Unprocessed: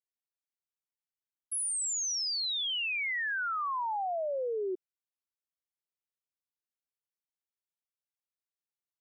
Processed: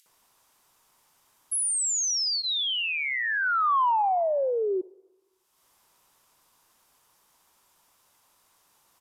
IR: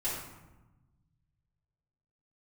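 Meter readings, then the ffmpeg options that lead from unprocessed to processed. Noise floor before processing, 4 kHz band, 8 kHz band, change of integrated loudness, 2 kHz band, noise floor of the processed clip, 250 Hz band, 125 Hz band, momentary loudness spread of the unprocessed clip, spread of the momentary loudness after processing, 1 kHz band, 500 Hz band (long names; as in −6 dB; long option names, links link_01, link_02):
below −85 dBFS, +5.0 dB, +6.0 dB, +6.5 dB, +5.5 dB, −68 dBFS, +6.5 dB, can't be measured, 5 LU, 6 LU, +9.5 dB, +7.0 dB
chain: -filter_complex "[0:a]acompressor=mode=upward:threshold=-50dB:ratio=2.5,equalizer=frequency=1000:width=2:gain=10.5,bandreject=frequency=4200:width=21,acrossover=split=2200[link_01][link_02];[link_01]adelay=60[link_03];[link_03][link_02]amix=inputs=2:normalize=0,asplit=2[link_04][link_05];[1:a]atrim=start_sample=2205[link_06];[link_05][link_06]afir=irnorm=-1:irlink=0,volume=-26dB[link_07];[link_04][link_07]amix=inputs=2:normalize=0,asoftclip=type=tanh:threshold=-13.5dB,aresample=32000,aresample=44100,acompressor=threshold=-27dB:ratio=6,volume=6dB"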